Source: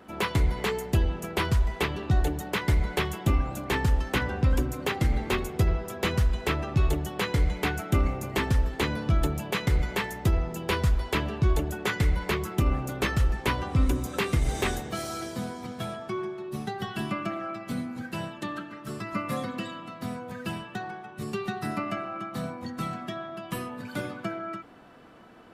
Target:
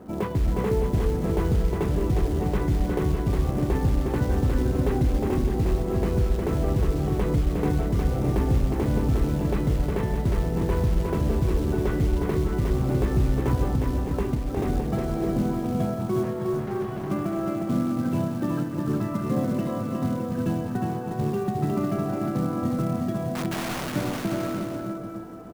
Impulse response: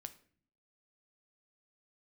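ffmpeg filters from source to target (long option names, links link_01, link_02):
-filter_complex "[0:a]lowpass=frequency=1500:poles=1,tiltshelf=frequency=970:gain=8.5,asettb=1/sr,asplit=3[link_01][link_02][link_03];[link_01]atrim=end=13.654[link_04];[link_02]atrim=start=13.65:end=14.57,asetpts=PTS-STARTPTS,afade=type=in:duration=0.004:curve=qsin,afade=type=out:start_time=0.916:duration=0.004:curve=qsin,acompressor=threshold=-27dB:ratio=8[link_05];[link_03]atrim=start=14.566[link_06];[link_04][link_05]acrossfade=duration=0.004:curve1=hsin:curve2=qsin[link_07];[link_07][link_06]acrossfade=duration=0.004:curve1=qsin:curve2=hsin,alimiter=limit=-19.5dB:level=0:latency=1:release=129,asettb=1/sr,asplit=3[link_08][link_09][link_10];[link_08]atrim=end=23.354[link_11];[link_09]atrim=start=23.35:end=23.96,asetpts=PTS-STARTPTS,afade=type=in:duration=0.004:curve=qsin,afade=type=out:start_time=0.606:duration=0.004:curve=qsin,aeval=exprs='(mod(33.5*val(0)+1,2)-1)/33.5':channel_layout=same[link_12];[link_10]atrim=start=23.956[link_13];[link_11][link_12]acrossfade=duration=0.004:curve1=hsin:curve2=qsin[link_14];[link_14][link_13]acrossfade=duration=0.004:curve1=qsin:curve2=hsin,acrusher=bits=6:mode=log:mix=0:aa=0.000001,flanger=delay=6.4:depth=1.1:regen=-86:speed=0.13:shape=sinusoidal,asettb=1/sr,asplit=3[link_15][link_16][link_17];[link_15]atrim=end=16.234[link_18];[link_16]atrim=start=16.23:end=17.1,asetpts=PTS-STARTPTS,afade=type=in:duration=0.004:curve=qsin,afade=type=out:start_time=0.866:duration=0.004:curve=qsin,asoftclip=type=hard:threshold=-38.5dB[link_19];[link_17]atrim=start=17.096[link_20];[link_18][link_19]acrossfade=duration=0.004:curve1=hsin:curve2=qsin[link_21];[link_21][link_20]acrossfade=duration=0.004:curve1=qsin:curve2=hsin,aecho=1:1:360|612|788.4|911.9|998.3:0.631|0.398|0.251|0.158|0.1,volume=7dB"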